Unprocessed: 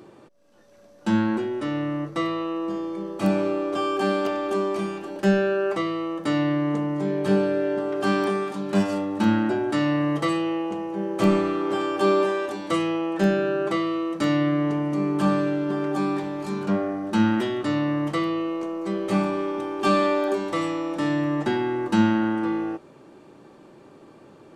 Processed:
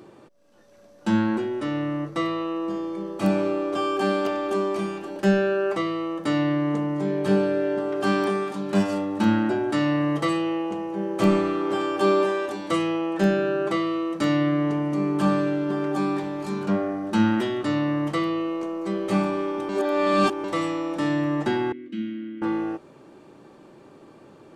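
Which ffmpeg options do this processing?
-filter_complex "[0:a]asettb=1/sr,asplit=3[a][b][c];[a]atrim=end=21.724[d];[b]atrim=start=21.72:end=22.42,asetpts=PTS-STARTPTS,afade=t=in:d=0.004:c=qsin,afade=t=out:st=0.696:d=0.004:c=qsin,asplit=3[e][f][g];[e]bandpass=f=270:t=q:w=8,volume=0dB[h];[f]bandpass=f=2.29k:t=q:w=8,volume=-6dB[i];[g]bandpass=f=3.01k:t=q:w=8,volume=-9dB[j];[h][i][j]amix=inputs=3:normalize=0[k];[c]atrim=start=22.416[l];[d][k]acrossfade=d=0.004:c1=hsin:c2=qsin[m];[m][l]acrossfade=d=0.004:c1=qsin:c2=hsin,asplit=3[n][o][p];[n]atrim=end=19.692[q];[o]atrim=start=19.688:end=20.442,asetpts=PTS-STARTPTS,areverse[r];[p]atrim=start=20.438[s];[q][r]acrossfade=d=0.004:c1=hsin:c2=hsin[t];[t][s]acrossfade=d=0.004:c1=hsin:c2=hsin"

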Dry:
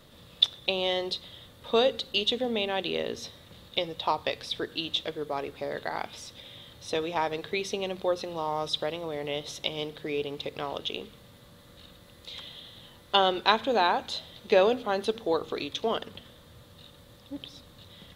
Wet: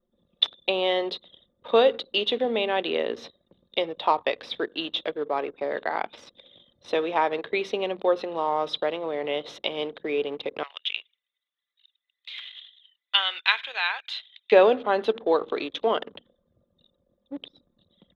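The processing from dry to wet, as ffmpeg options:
-filter_complex "[0:a]asettb=1/sr,asplit=3[a][b][c];[a]atrim=end=10.634[d];[b]atrim=start=10.63:end=14.52,asetpts=PTS-STARTPTS,afade=t=in:d=0.004:c=qsin,afade=t=out:st=3.886:d=0.004:c=qsin,highpass=f=2.2k:t=q:w=1.9[e];[c]atrim=start=14.516[f];[d][e]acrossfade=d=0.004:c1=hsin:c2=qsin[g];[g][f]acrossfade=d=0.004:c1=qsin:c2=hsin,anlmdn=0.1,acrossover=split=230 3400:gain=0.1 1 0.1[h][i][j];[h][i][j]amix=inputs=3:normalize=0,volume=5.5dB"

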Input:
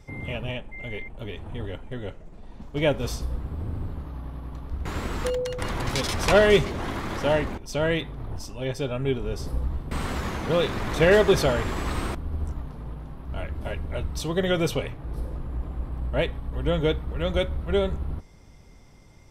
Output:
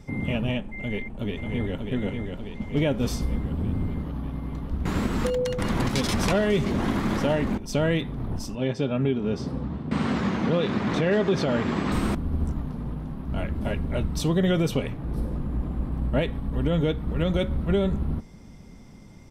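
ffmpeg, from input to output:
-filter_complex "[0:a]asplit=2[a][b];[b]afade=t=in:st=0.78:d=0.01,afade=t=out:st=1.89:d=0.01,aecho=0:1:590|1180|1770|2360|2950|3540|4130|4720|5310|5900:0.595662|0.38718|0.251667|0.163584|0.106329|0.0691141|0.0449242|0.0292007|0.0189805|0.0123373[c];[a][c]amix=inputs=2:normalize=0,asettb=1/sr,asplit=3[d][e][f];[d]atrim=end=8.554[g];[e]atrim=start=8.55:end=11.92,asetpts=PTS-STARTPTS,afade=t=in:d=0.004:c=qsin,afade=t=out:st=3.366:d=0.004:c=qsin,highpass=110,lowpass=5k[h];[f]atrim=start=11.916[i];[g][h]acrossfade=d=0.004:c1=hsin:c2=qsin[j];[j][i]acrossfade=d=0.004:c1=qsin:c2=hsin,equalizer=f=210:w=1.4:g=11,alimiter=limit=-15.5dB:level=0:latency=1:release=166,volume=1.5dB"

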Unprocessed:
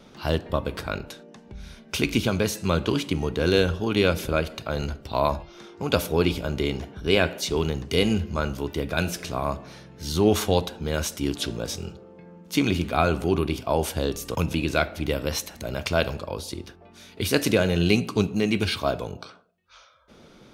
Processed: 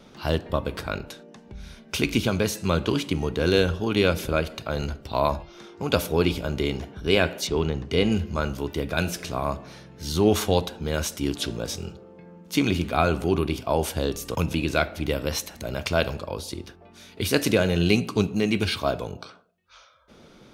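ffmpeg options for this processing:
-filter_complex "[0:a]asettb=1/sr,asplit=3[a][b][c];[a]atrim=end=7.474[d];[b]atrim=start=7.47:end=8.12,asetpts=PTS-STARTPTS,afade=t=in:d=0.004:c=qsin,afade=t=out:st=0.646:d=0.004:c=qsin,aemphasis=mode=reproduction:type=50fm[e];[c]atrim=start=8.116[f];[d][e]acrossfade=d=0.004:c1=hsin:c2=qsin[g];[g][f]acrossfade=d=0.004:c1=qsin:c2=hsin"

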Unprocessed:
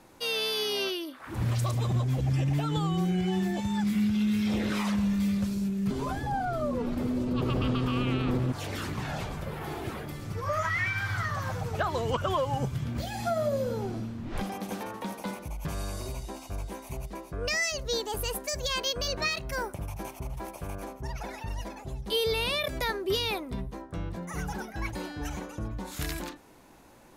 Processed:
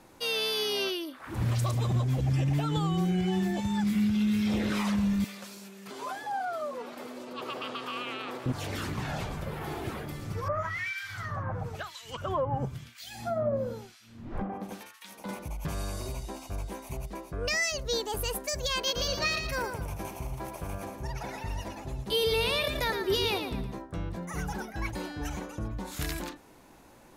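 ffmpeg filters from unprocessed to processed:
-filter_complex "[0:a]asettb=1/sr,asplit=3[a][b][c];[a]atrim=end=5.244[d];[b]atrim=start=5.24:end=8.46,asetpts=PTS-STARTPTS,afade=t=in:d=0.004:c=qsin,afade=t=out:st=3.216:d=0.004:c=qsin,highpass=610[e];[c]atrim=start=8.456[f];[d][e]acrossfade=d=0.004:c1=hsin:c2=qsin[g];[g][f]acrossfade=d=0.004:c1=qsin:c2=hsin,asettb=1/sr,asplit=3[h][i][j];[h]atrim=end=10.484[k];[i]atrim=start=10.48:end=15.29,asetpts=PTS-STARTPTS,afade=t=in:d=0.004:c=qsin,afade=t=out:st=4.806:d=0.004:c=qsin,acrossover=split=1700[l][m];[l]aeval=exprs='val(0)*(1-1/2+1/2*cos(2*PI*1*n/s))':c=same[n];[m]aeval=exprs='val(0)*(1-1/2-1/2*cos(2*PI*1*n/s))':c=same[o];[n][o]amix=inputs=2:normalize=0[p];[j]atrim=start=15.286[q];[k][p]acrossfade=d=0.004:c1=hsin:c2=qsin[r];[r][q]acrossfade=d=0.004:c1=qsin:c2=hsin,asettb=1/sr,asplit=3[s][t][u];[s]atrim=end=18.764[v];[t]atrim=start=18.76:end=23.79,asetpts=PTS-STARTPTS,afade=t=in:d=0.004:c=qsin,afade=t=out:st=5.026:d=0.004:c=qsin,aecho=1:1:114|228|342|456:0.447|0.147|0.0486|0.0161,atrim=end_sample=221823[w];[u]atrim=start=23.786[x];[v][w]acrossfade=d=0.004:c1=hsin:c2=qsin[y];[y][x]acrossfade=d=0.004:c1=qsin:c2=hsin"

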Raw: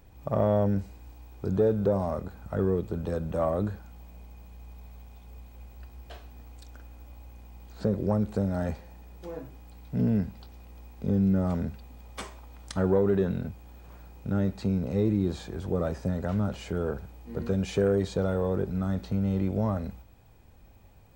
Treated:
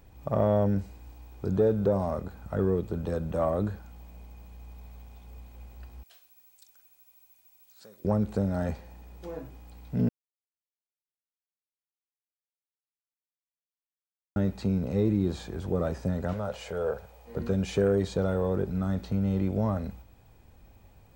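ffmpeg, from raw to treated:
-filter_complex "[0:a]asettb=1/sr,asplit=3[a][b][c];[a]atrim=end=6.034[d];[b]atrim=start=6.03:end=8.05,asetpts=PTS-STARTPTS,afade=t=in:d=0.004:c=qsin,afade=t=out:st=2.016:d=0.004:c=qsin,aderivative[e];[c]atrim=start=8.046[f];[d][e]acrossfade=d=0.004:c1=hsin:c2=qsin[g];[g][f]acrossfade=d=0.004:c1=qsin:c2=hsin,asettb=1/sr,asplit=3[h][i][j];[h]atrim=end=16.334[k];[i]atrim=start=16.33:end=17.36,asetpts=PTS-STARTPTS,afade=t=in:d=0.004:c=qsin,afade=t=out:st=1.026:d=0.004:c=qsin,lowshelf=f=400:t=q:w=3:g=-7.5[l];[j]atrim=start=17.356[m];[k][l]acrossfade=d=0.004:c1=hsin:c2=qsin[n];[n][m]acrossfade=d=0.004:c1=qsin:c2=hsin,asplit=3[o][p][q];[o]atrim=end=10.09,asetpts=PTS-STARTPTS,afade=t=out:st=10.086:d=0.004:c=hsin[r];[p]atrim=start=10.09:end=14.36,asetpts=PTS-STARTPTS,volume=0[s];[q]atrim=start=14.36,asetpts=PTS-STARTPTS,afade=t=in:d=0.004:c=hsin[t];[r][s][t]concat=n=3:v=0:a=1"

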